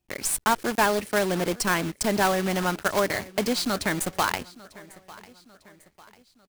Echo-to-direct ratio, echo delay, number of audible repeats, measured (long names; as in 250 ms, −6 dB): −20.0 dB, 898 ms, 3